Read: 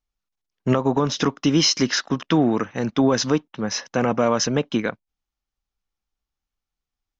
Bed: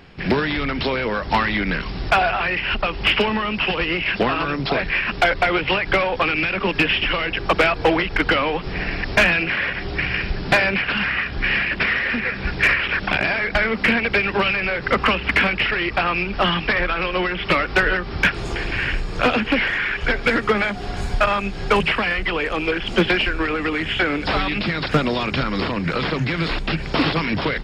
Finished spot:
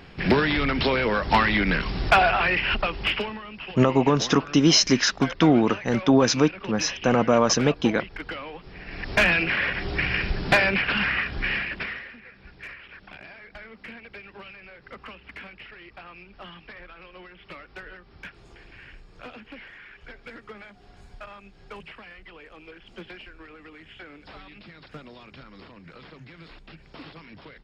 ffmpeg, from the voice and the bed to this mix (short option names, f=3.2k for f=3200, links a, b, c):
-filter_complex "[0:a]adelay=3100,volume=0.5dB[a];[1:a]volume=13.5dB,afade=t=out:st=2.54:d=0.86:silence=0.158489,afade=t=in:st=8.85:d=0.47:silence=0.199526,afade=t=out:st=11.09:d=1.05:silence=0.0841395[b];[a][b]amix=inputs=2:normalize=0"